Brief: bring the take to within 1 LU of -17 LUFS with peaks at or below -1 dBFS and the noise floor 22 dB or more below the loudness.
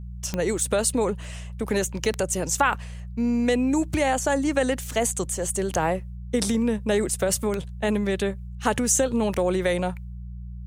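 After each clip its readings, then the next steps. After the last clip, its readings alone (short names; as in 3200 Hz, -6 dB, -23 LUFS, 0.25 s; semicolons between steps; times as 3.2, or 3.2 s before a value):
clicks 6; hum 60 Hz; harmonics up to 180 Hz; hum level -33 dBFS; loudness -24.5 LUFS; peak -6.5 dBFS; loudness target -17.0 LUFS
-> de-click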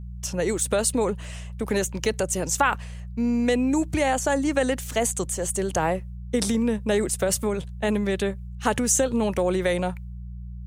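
clicks 0; hum 60 Hz; harmonics up to 180 Hz; hum level -33 dBFS
-> de-hum 60 Hz, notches 3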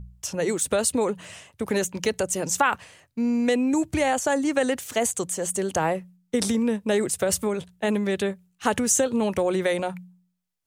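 hum none; loudness -24.5 LUFS; peak -7.0 dBFS; loudness target -17.0 LUFS
-> gain +7.5 dB; limiter -1 dBFS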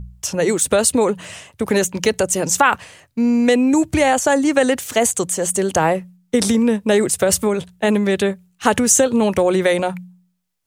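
loudness -17.5 LUFS; peak -1.0 dBFS; noise floor -63 dBFS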